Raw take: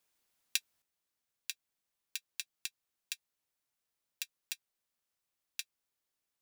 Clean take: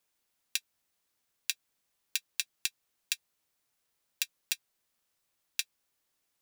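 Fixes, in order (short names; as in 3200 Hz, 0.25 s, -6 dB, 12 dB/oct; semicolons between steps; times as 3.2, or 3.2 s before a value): gain correction +8 dB, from 0.82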